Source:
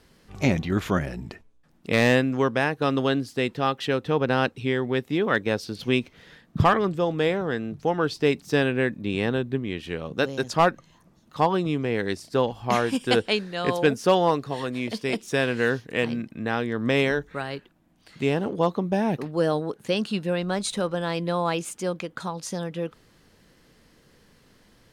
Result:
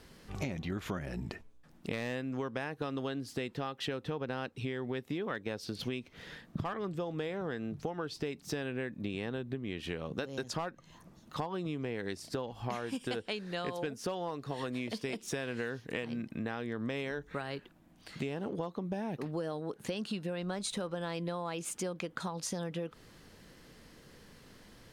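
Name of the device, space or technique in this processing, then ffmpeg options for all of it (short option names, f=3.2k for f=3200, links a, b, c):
serial compression, peaks first: -af "acompressor=threshold=-29dB:ratio=6,acompressor=threshold=-39dB:ratio=2,volume=1.5dB"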